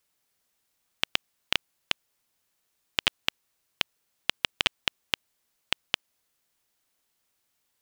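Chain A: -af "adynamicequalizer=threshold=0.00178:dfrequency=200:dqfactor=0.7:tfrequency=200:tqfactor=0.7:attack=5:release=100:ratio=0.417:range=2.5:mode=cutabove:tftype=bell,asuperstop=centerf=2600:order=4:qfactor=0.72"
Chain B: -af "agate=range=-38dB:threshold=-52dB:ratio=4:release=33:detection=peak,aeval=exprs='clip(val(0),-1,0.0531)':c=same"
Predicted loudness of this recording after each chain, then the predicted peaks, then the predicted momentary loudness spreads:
-42.0, -36.0 LUFS; -11.0, -5.5 dBFS; 6, 6 LU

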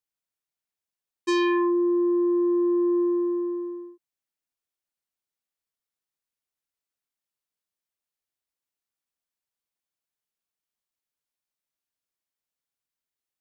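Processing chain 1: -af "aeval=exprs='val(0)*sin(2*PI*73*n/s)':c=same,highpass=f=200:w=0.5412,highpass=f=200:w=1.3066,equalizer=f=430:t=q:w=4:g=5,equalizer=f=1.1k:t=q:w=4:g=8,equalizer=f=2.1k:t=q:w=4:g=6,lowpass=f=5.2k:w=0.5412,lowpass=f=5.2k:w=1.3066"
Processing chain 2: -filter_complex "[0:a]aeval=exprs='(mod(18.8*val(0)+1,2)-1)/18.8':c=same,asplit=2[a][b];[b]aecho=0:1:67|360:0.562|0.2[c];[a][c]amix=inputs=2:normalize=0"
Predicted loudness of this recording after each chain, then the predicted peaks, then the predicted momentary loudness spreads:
-23.5, -28.0 LUFS; -10.5, -21.0 dBFS; 11, 11 LU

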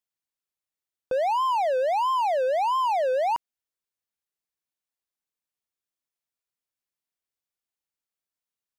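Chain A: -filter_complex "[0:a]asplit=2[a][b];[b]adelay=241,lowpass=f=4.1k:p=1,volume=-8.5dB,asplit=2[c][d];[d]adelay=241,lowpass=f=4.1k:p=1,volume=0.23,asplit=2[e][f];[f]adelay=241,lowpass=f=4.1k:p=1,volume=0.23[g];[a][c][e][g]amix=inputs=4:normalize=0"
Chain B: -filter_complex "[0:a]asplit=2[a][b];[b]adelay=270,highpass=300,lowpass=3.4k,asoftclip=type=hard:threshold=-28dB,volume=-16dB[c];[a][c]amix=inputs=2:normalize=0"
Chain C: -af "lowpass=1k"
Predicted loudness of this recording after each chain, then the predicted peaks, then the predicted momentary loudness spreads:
-24.0, -24.5, -26.0 LUFS; -15.5, -18.0, -20.5 dBFS; 7, 4, 4 LU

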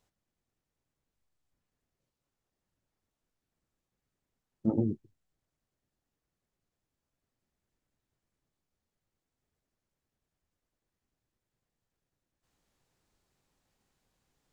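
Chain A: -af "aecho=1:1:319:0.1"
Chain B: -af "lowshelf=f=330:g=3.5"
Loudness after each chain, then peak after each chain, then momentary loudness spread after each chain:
-32.5, -30.0 LUFS; -16.0, -14.0 dBFS; 15, 8 LU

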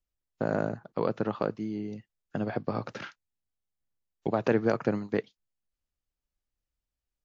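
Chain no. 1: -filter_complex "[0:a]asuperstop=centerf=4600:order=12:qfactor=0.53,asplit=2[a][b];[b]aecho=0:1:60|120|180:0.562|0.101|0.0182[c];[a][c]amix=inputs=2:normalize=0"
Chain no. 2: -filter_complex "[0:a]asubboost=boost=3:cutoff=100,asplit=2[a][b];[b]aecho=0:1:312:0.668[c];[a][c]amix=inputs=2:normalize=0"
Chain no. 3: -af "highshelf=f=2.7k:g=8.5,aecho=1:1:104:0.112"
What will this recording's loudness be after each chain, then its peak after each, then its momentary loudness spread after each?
-30.5, -31.0, -31.0 LUFS; -11.5, -11.0, -10.5 dBFS; 14, 12, 14 LU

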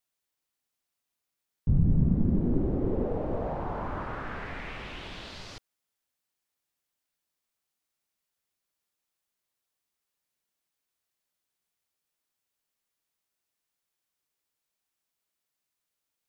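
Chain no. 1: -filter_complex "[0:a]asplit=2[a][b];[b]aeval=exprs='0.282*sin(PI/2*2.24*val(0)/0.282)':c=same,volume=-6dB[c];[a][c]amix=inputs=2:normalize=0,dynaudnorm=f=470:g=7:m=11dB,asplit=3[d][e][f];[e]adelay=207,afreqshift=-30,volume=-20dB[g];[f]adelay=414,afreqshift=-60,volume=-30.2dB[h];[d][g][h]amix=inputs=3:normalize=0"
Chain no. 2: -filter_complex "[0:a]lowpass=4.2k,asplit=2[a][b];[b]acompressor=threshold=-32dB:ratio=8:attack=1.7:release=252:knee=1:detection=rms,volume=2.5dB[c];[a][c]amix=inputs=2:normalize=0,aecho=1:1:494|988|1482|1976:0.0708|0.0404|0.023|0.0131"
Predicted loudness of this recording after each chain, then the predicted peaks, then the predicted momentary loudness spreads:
-15.5, -28.0 LUFS; -2.0, -10.0 dBFS; 12, 12 LU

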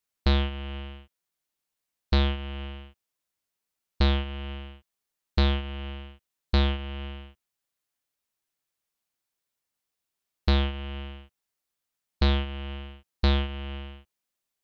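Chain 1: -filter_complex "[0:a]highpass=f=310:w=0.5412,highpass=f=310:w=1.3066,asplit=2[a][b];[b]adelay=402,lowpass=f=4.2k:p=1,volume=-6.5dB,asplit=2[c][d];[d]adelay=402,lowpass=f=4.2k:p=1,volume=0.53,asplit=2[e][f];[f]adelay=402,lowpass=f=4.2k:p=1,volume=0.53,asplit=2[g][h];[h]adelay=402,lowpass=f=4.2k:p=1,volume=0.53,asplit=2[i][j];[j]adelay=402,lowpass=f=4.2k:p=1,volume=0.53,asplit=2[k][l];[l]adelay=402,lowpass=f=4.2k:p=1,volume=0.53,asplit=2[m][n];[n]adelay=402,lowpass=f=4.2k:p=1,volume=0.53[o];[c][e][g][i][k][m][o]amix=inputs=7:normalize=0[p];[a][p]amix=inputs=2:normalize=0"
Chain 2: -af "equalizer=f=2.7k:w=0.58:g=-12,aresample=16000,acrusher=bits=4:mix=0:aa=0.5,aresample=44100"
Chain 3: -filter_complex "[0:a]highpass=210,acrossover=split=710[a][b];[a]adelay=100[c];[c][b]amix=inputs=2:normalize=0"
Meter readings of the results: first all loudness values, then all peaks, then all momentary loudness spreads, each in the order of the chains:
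-35.0, -28.0, -34.0 LUFS; -11.5, -16.5, -13.5 dBFS; 19, 9, 17 LU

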